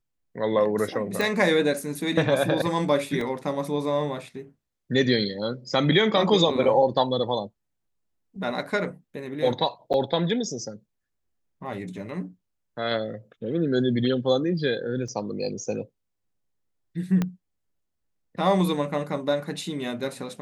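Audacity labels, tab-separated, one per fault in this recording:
1.210000	1.210000	pop
3.210000	3.210000	dropout 2.2 ms
9.930000	9.940000	dropout 9.1 ms
15.080000	15.080000	dropout 3.8 ms
17.220000	17.220000	pop -13 dBFS

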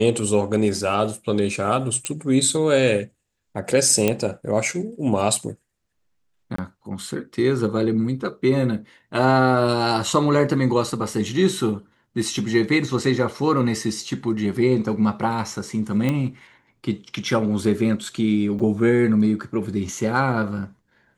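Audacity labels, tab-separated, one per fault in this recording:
2.050000	2.050000	pop -10 dBFS
4.080000	4.080000	pop -5 dBFS
6.560000	6.580000	dropout 24 ms
16.090000	16.090000	pop -11 dBFS
18.590000	18.600000	dropout 6.5 ms

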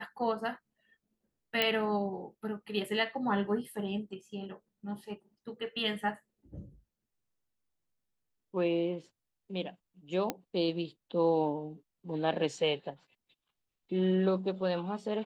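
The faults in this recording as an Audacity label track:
1.620000	1.620000	pop -13 dBFS
10.300000	10.300000	pop -16 dBFS

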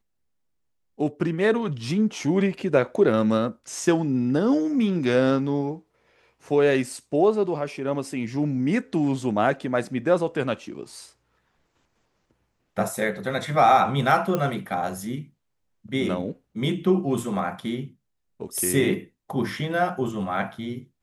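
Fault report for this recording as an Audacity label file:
14.350000	14.350000	pop -12 dBFS

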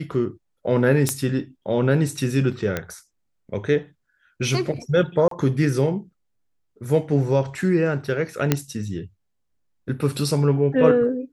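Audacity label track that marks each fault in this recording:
1.090000	1.090000	pop -6 dBFS
2.770000	2.770000	pop -10 dBFS
5.280000	5.310000	dropout 33 ms
8.520000	8.520000	pop -3 dBFS

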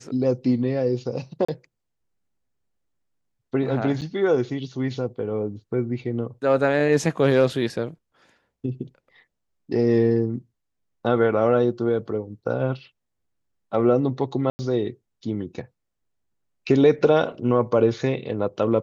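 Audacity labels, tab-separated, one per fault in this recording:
1.450000	1.490000	dropout 35 ms
4.010000	4.020000	dropout 7.6 ms
14.500000	14.590000	dropout 90 ms

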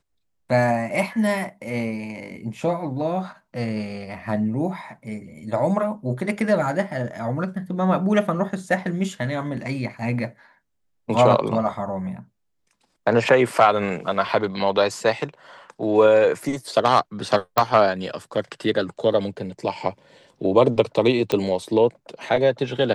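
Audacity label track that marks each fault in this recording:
17.580000	17.580000	pop
21.320000	21.320000	pop -9 dBFS

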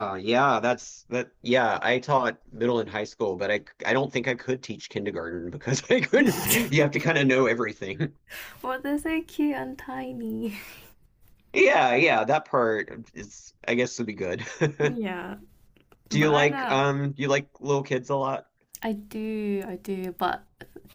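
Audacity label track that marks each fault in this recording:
18.830000	18.830000	pop -19 dBFS

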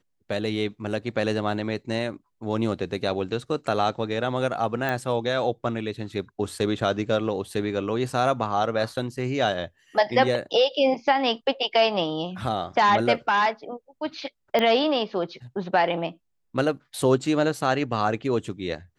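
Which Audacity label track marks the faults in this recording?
4.890000	4.890000	pop -14 dBFS
14.590000	14.590000	pop -11 dBFS

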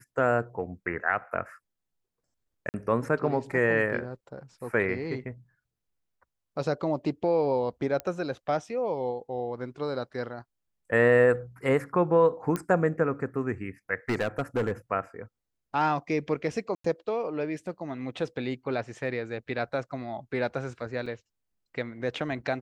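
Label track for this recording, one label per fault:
2.690000	2.740000	dropout 49 ms
8.000000	8.000000	pop -18 dBFS
12.560000	12.560000	pop -16 dBFS
14.090000	14.720000	clipped -22.5 dBFS
16.750000	16.840000	dropout 94 ms
21.060000	21.060000	dropout 4.5 ms

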